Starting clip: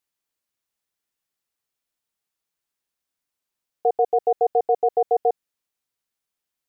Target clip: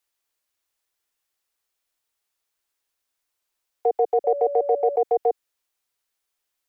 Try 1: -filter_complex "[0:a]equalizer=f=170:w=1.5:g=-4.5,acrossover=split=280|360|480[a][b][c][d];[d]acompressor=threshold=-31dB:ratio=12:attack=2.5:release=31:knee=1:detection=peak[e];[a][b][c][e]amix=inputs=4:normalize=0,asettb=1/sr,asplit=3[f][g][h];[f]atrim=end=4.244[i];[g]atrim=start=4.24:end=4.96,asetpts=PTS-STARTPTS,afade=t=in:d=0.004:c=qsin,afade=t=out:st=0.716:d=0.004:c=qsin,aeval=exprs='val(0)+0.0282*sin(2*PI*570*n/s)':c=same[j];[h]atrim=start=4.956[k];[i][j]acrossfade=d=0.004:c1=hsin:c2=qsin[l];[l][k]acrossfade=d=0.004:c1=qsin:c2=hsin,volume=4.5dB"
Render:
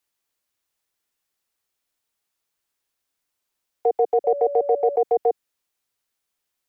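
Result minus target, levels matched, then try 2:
125 Hz band +5.5 dB
-filter_complex "[0:a]equalizer=f=170:w=1.5:g=-16.5,acrossover=split=280|360|480[a][b][c][d];[d]acompressor=threshold=-31dB:ratio=12:attack=2.5:release=31:knee=1:detection=peak[e];[a][b][c][e]amix=inputs=4:normalize=0,asettb=1/sr,asplit=3[f][g][h];[f]atrim=end=4.244[i];[g]atrim=start=4.24:end=4.96,asetpts=PTS-STARTPTS,afade=t=in:d=0.004:c=qsin,afade=t=out:st=0.716:d=0.004:c=qsin,aeval=exprs='val(0)+0.0282*sin(2*PI*570*n/s)':c=same[j];[h]atrim=start=4.956[k];[i][j]acrossfade=d=0.004:c1=hsin:c2=qsin[l];[l][k]acrossfade=d=0.004:c1=qsin:c2=hsin,volume=4.5dB"

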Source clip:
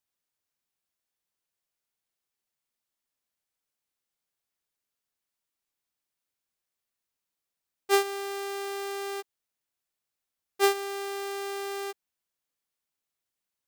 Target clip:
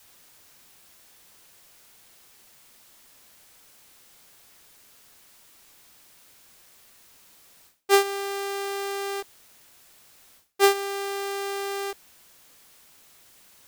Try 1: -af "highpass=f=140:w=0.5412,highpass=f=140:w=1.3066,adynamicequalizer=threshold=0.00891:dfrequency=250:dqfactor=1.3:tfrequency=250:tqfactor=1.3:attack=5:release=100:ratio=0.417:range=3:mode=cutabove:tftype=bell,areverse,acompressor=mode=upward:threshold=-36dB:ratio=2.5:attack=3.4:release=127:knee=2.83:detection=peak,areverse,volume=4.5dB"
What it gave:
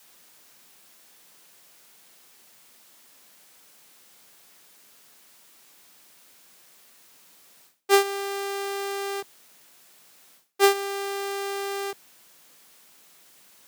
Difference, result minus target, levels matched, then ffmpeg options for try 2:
125 Hz band -4.5 dB
-af "adynamicequalizer=threshold=0.00891:dfrequency=250:dqfactor=1.3:tfrequency=250:tqfactor=1.3:attack=5:release=100:ratio=0.417:range=3:mode=cutabove:tftype=bell,areverse,acompressor=mode=upward:threshold=-36dB:ratio=2.5:attack=3.4:release=127:knee=2.83:detection=peak,areverse,volume=4.5dB"

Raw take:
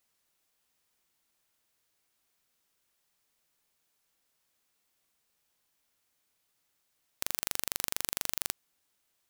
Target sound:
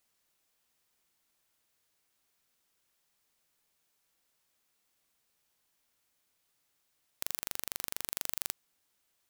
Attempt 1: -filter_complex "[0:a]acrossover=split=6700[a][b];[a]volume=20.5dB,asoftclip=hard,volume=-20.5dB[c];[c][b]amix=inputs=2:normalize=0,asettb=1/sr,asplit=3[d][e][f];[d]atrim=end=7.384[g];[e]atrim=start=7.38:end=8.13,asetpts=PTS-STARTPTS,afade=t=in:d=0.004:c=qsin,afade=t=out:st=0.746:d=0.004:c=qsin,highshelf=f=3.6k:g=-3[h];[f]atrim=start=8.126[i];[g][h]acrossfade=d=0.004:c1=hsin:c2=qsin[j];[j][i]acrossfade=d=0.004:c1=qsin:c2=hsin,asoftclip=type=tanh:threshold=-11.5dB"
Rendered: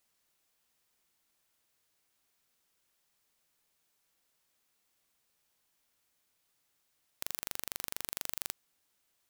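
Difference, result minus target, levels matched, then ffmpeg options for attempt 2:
soft clip: distortion +12 dB
-filter_complex "[0:a]acrossover=split=6700[a][b];[a]volume=20.5dB,asoftclip=hard,volume=-20.5dB[c];[c][b]amix=inputs=2:normalize=0,asettb=1/sr,asplit=3[d][e][f];[d]atrim=end=7.384[g];[e]atrim=start=7.38:end=8.13,asetpts=PTS-STARTPTS,afade=t=in:d=0.004:c=qsin,afade=t=out:st=0.746:d=0.004:c=qsin,highshelf=f=3.6k:g=-3[h];[f]atrim=start=8.126[i];[g][h]acrossfade=d=0.004:c1=hsin:c2=qsin[j];[j][i]acrossfade=d=0.004:c1=qsin:c2=hsin,asoftclip=type=tanh:threshold=-4dB"

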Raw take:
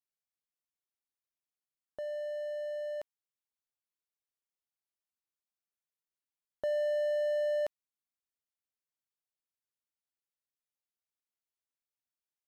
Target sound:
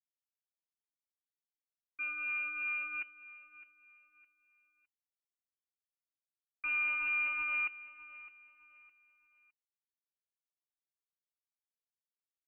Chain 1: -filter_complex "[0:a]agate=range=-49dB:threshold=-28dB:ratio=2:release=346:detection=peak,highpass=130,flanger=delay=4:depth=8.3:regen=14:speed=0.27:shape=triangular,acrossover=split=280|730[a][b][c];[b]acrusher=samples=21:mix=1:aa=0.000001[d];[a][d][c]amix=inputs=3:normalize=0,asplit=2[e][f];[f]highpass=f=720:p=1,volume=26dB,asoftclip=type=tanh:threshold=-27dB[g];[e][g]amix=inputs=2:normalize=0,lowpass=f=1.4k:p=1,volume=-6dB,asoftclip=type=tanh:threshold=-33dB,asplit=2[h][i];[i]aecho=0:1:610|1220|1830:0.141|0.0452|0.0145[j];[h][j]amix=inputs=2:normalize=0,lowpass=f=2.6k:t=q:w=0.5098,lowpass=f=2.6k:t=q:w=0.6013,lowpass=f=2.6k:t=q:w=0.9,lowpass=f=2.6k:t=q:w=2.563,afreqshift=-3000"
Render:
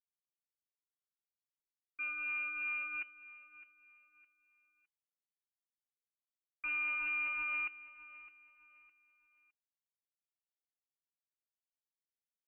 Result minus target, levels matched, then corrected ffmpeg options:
soft clip: distortion +18 dB
-filter_complex "[0:a]agate=range=-49dB:threshold=-28dB:ratio=2:release=346:detection=peak,highpass=130,flanger=delay=4:depth=8.3:regen=14:speed=0.27:shape=triangular,acrossover=split=280|730[a][b][c];[b]acrusher=samples=21:mix=1:aa=0.000001[d];[a][d][c]amix=inputs=3:normalize=0,asplit=2[e][f];[f]highpass=f=720:p=1,volume=26dB,asoftclip=type=tanh:threshold=-27dB[g];[e][g]amix=inputs=2:normalize=0,lowpass=f=1.4k:p=1,volume=-6dB,asoftclip=type=tanh:threshold=-22dB,asplit=2[h][i];[i]aecho=0:1:610|1220|1830:0.141|0.0452|0.0145[j];[h][j]amix=inputs=2:normalize=0,lowpass=f=2.6k:t=q:w=0.5098,lowpass=f=2.6k:t=q:w=0.6013,lowpass=f=2.6k:t=q:w=0.9,lowpass=f=2.6k:t=q:w=2.563,afreqshift=-3000"

